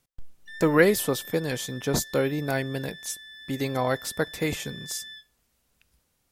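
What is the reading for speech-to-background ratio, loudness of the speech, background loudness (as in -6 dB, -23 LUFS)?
15.5 dB, -27.0 LUFS, -42.5 LUFS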